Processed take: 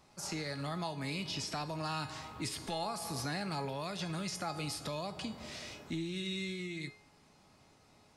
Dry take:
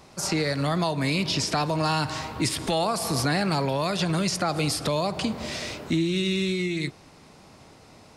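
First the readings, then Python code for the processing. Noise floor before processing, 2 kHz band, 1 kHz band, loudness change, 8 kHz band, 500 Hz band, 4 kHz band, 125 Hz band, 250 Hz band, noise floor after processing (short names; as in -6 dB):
-52 dBFS, -12.0 dB, -12.0 dB, -13.0 dB, -12.0 dB, -14.5 dB, -12.0 dB, -13.5 dB, -14.0 dB, -64 dBFS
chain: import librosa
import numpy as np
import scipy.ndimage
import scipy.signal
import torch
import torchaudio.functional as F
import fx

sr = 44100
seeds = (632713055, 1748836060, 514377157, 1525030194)

y = fx.peak_eq(x, sr, hz=430.0, db=-5.5, octaves=0.34)
y = fx.comb_fb(y, sr, f0_hz=420.0, decay_s=0.47, harmonics='all', damping=0.0, mix_pct=80)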